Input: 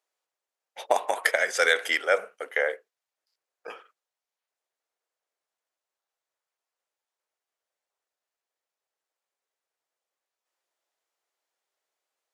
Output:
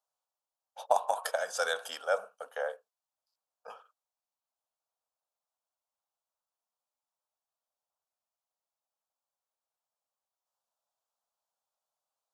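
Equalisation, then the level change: peaking EQ 860 Hz +3.5 dB 2.4 oct; static phaser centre 850 Hz, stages 4; -5.0 dB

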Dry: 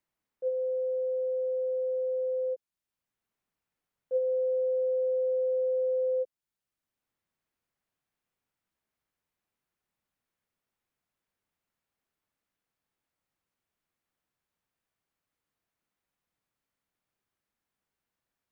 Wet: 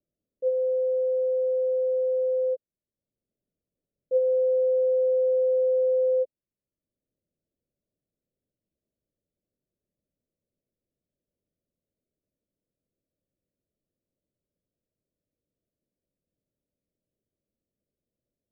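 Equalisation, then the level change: elliptic low-pass 600 Hz; +6.0 dB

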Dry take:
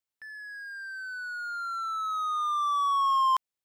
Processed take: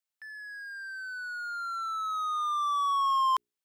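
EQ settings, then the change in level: bass shelf 500 Hz -9.5 dB; hum notches 60/120/180/240/300/360/420 Hz; 0.0 dB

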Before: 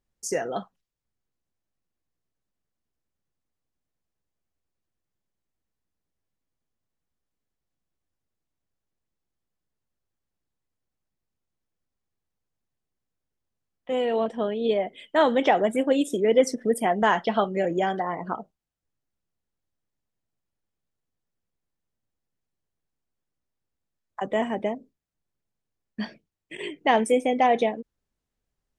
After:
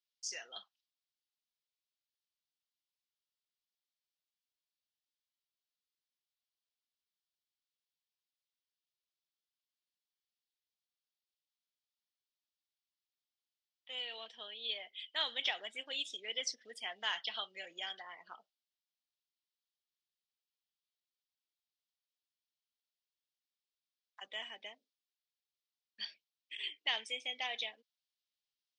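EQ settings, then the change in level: Butterworth band-pass 4.2 kHz, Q 1.6; tilt EQ -4 dB/octave; +10.0 dB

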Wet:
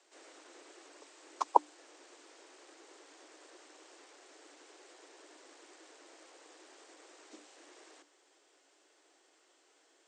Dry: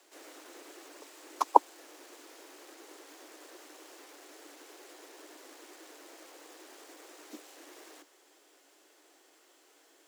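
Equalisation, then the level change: brick-wall FIR low-pass 9 kHz; peaking EQ 190 Hz -11 dB 0.54 oct; hum notches 60/120/180/240/300 Hz; -4.5 dB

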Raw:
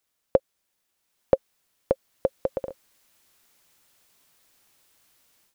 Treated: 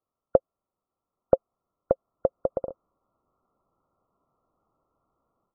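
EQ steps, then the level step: brick-wall FIR low-pass 1.4 kHz; band-stop 870 Hz, Q 12; dynamic bell 670 Hz, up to +7 dB, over -45 dBFS, Q 7.9; 0.0 dB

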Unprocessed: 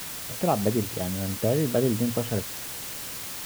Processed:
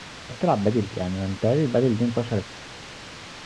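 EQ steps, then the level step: Gaussian low-pass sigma 1.7 samples; +3.0 dB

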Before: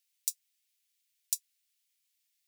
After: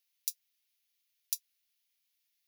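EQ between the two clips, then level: peaking EQ 8.1 kHz -13 dB 0.32 oct; 0.0 dB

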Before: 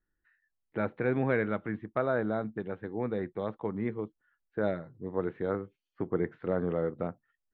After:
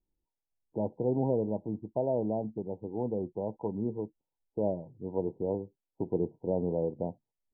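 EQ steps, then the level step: brick-wall FIR low-pass 1 kHz; 0.0 dB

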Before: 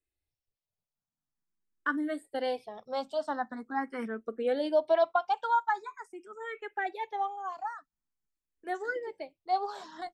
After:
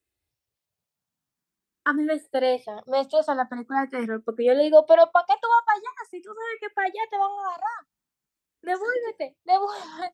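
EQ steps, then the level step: high-pass 63 Hz; dynamic bell 580 Hz, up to +5 dB, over -44 dBFS, Q 3.9; +7.5 dB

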